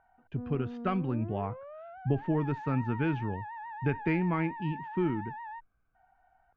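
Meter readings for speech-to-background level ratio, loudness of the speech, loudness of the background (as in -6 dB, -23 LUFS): 10.0 dB, -32.5 LUFS, -42.5 LUFS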